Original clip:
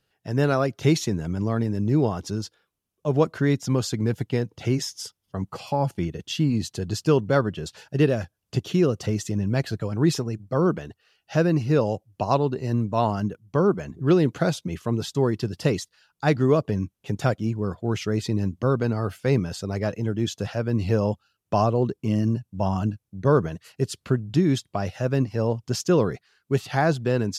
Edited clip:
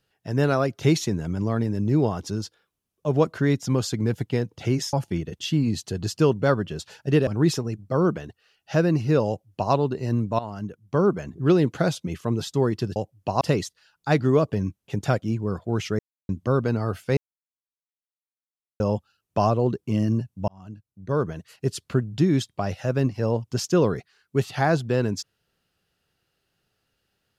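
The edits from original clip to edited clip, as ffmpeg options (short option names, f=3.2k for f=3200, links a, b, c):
-filter_complex "[0:a]asplit=11[a][b][c][d][e][f][g][h][i][j][k];[a]atrim=end=4.932[l];[b]atrim=start=5.798:end=8.142[m];[c]atrim=start=9.878:end=13,asetpts=PTS-STARTPTS,afade=t=out:st=3.118:d=0.004:c=hsin:silence=0.177828[n];[d]atrim=start=13:end=15.572,asetpts=PTS-STARTPTS,afade=t=in:d=0.62:silence=0.177828[o];[e]atrim=start=11.888:end=12.342[p];[f]atrim=start=15.568:end=18.15,asetpts=PTS-STARTPTS,afade=t=out:st=2.578:d=0.004:c=hsin[q];[g]atrim=start=18.15:end=18.45,asetpts=PTS-STARTPTS,volume=0[r];[h]atrim=start=18.45:end=19.33,asetpts=PTS-STARTPTS,afade=t=in:d=0.004:c=hsin,afade=t=out:st=0.876:d=0.004:c=hsin[s];[i]atrim=start=19.33:end=20.96,asetpts=PTS-STARTPTS,volume=0[t];[j]atrim=start=20.96:end=22.64,asetpts=PTS-STARTPTS,afade=t=in:d=0.004:c=hsin,afade=t=out:st=1.676:d=0.004:c=hsin[u];[k]atrim=start=22.64,asetpts=PTS-STARTPTS,afade=t=in:d=1.24[v];[l][m]acrossfade=d=0.004:c1=hsin:c2=hsin[w];[n][o]concat=n=2:v=0:a=1[x];[w][x]acrossfade=d=0.004:c1=hsin:c2=hsin[y];[y][p]acrossfade=d=0.004:c1=hsin:c2=hsin[z];[q][r][s][t][u][v]concat=n=6:v=0:a=1[aa];[z][aa]acrossfade=d=0.004:c1=hsin:c2=hsin"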